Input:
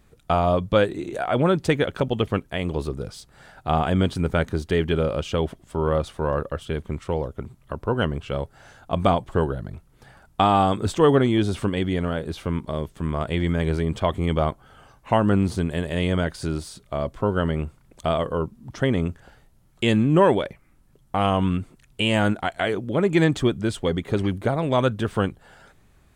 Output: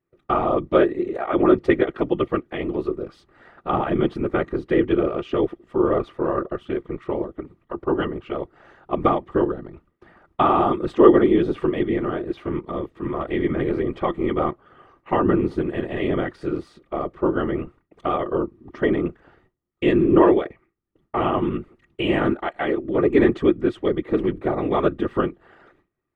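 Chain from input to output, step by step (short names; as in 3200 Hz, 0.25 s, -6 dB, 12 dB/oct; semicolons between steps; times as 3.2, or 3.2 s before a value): gate with hold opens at -43 dBFS; EQ curve 120 Hz 0 dB, 330 Hz +7 dB, 2600 Hz +4 dB, 7900 Hz -15 dB; whisperiser; small resonant body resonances 350/1200/1900 Hz, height 11 dB, ringing for 40 ms; gain -8 dB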